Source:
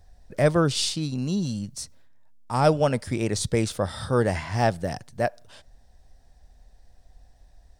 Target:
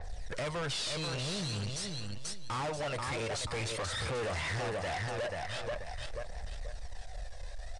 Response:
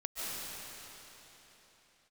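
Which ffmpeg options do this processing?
-filter_complex "[0:a]equalizer=frequency=250:width_type=o:width=1:gain=-11,equalizer=frequency=500:width_type=o:width=1:gain=8,equalizer=frequency=1000:width_type=o:width=1:gain=4,equalizer=frequency=2000:width_type=o:width=1:gain=9,equalizer=frequency=4000:width_type=o:width=1:gain=6,equalizer=frequency=8000:width_type=o:width=1:gain=5,acompressor=threshold=-33dB:ratio=2,asplit=2[link_01][link_02];[link_02]alimiter=limit=-24dB:level=0:latency=1:release=331,volume=3dB[link_03];[link_01][link_03]amix=inputs=2:normalize=0,aphaser=in_gain=1:out_gain=1:delay=2:decay=0.53:speed=0.47:type=triangular,asplit=2[link_04][link_05];[link_05]aecho=0:1:485|970|1455|1940:0.398|0.135|0.046|0.0156[link_06];[link_04][link_06]amix=inputs=2:normalize=0,aeval=exprs='(tanh(44.7*val(0)+0.15)-tanh(0.15))/44.7':channel_layout=same,acrusher=bits=7:mode=log:mix=0:aa=0.000001,aresample=22050,aresample=44100,adynamicequalizer=threshold=0.00355:dfrequency=4400:dqfactor=0.7:tfrequency=4400:tqfactor=0.7:attack=5:release=100:ratio=0.375:range=2:mode=cutabove:tftype=highshelf"

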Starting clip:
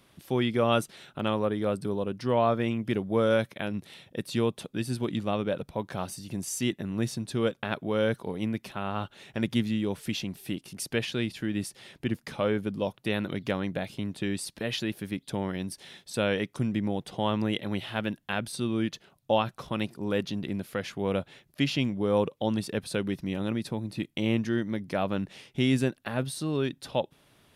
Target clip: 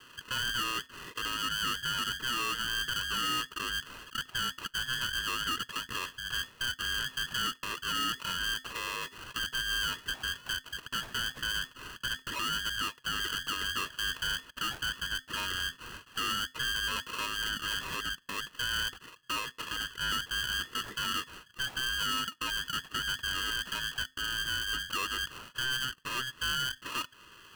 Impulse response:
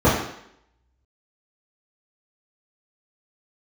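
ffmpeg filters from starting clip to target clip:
-af "equalizer=frequency=760:width_type=o:width=1.9:gain=10,acompressor=threshold=-22dB:ratio=6,alimiter=limit=-21dB:level=0:latency=1:release=290,asoftclip=type=tanh:threshold=-33.5dB,asuperstop=centerf=1100:order=20:qfactor=2.7,lowpass=frequency=2200:width_type=q:width=0.5098,lowpass=frequency=2200:width_type=q:width=0.6013,lowpass=frequency=2200:width_type=q:width=0.9,lowpass=frequency=2200:width_type=q:width=2.563,afreqshift=-2600,aeval=exprs='val(0)*sgn(sin(2*PI*780*n/s))':channel_layout=same,volume=4.5dB"

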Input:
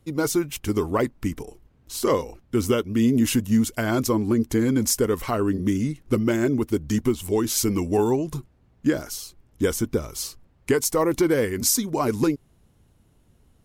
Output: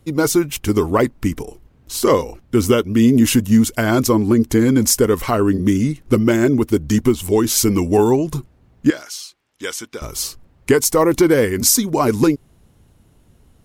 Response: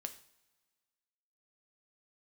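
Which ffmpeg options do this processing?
-filter_complex "[0:a]asettb=1/sr,asplit=3[link_01][link_02][link_03];[link_01]atrim=end=8.904[link_04];[link_02]atrim=start=8.9:end=10.02,asetpts=PTS-STARTPTS,afade=type=in:duration=0.004:curve=qsin,afade=type=out:start_time=1.116:duration=0.004:curve=qsin,bandpass=frequency=3200:width_type=q:width=0.64:csg=0[link_05];[link_03]atrim=start=10.016[link_06];[link_04][link_05]acrossfade=duration=0.004:curve1=hsin:curve2=qsin[link_07];[link_07][link_06]acrossfade=duration=0.004:curve1=qsin:curve2=hsin,volume=7dB"

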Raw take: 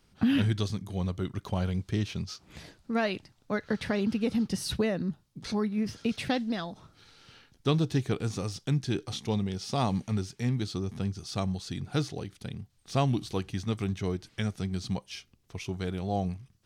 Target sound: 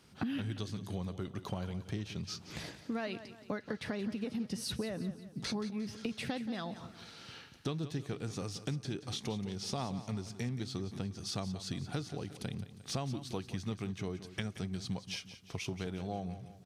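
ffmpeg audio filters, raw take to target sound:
ffmpeg -i in.wav -filter_complex "[0:a]highpass=87,acompressor=threshold=-40dB:ratio=6,asplit=2[link_01][link_02];[link_02]aecho=0:1:177|354|531|708|885:0.224|0.105|0.0495|0.0232|0.0109[link_03];[link_01][link_03]amix=inputs=2:normalize=0,aresample=32000,aresample=44100,volume=4.5dB" out.wav

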